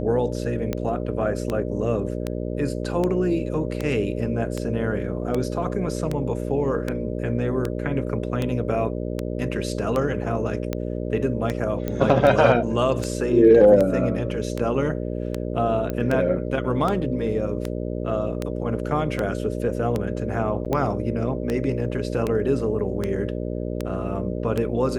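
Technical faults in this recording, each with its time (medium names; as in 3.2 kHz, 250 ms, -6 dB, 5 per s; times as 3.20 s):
buzz 60 Hz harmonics 10 -28 dBFS
tick 78 rpm -12 dBFS
11.88 s: pop -14 dBFS
15.90 s: pop -15 dBFS
20.65–20.66 s: dropout 7.4 ms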